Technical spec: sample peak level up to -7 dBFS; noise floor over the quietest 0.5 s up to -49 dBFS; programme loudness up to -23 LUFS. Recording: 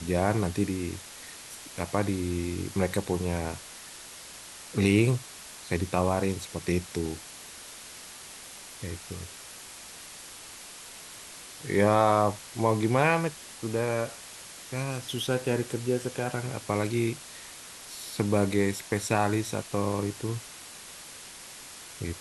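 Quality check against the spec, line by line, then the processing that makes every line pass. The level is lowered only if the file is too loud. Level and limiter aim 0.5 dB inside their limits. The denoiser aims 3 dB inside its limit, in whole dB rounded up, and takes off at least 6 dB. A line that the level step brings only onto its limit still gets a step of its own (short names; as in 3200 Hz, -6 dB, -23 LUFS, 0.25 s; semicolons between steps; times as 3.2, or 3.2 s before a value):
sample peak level -8.0 dBFS: OK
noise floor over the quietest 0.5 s -45 dBFS: fail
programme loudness -29.0 LUFS: OK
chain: denoiser 7 dB, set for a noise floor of -45 dBFS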